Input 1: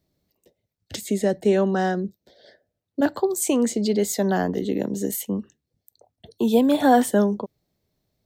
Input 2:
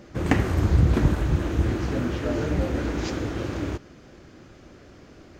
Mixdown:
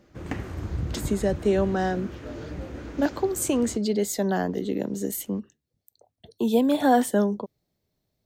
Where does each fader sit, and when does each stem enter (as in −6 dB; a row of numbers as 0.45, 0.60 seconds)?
−3.0, −11.0 decibels; 0.00, 0.00 seconds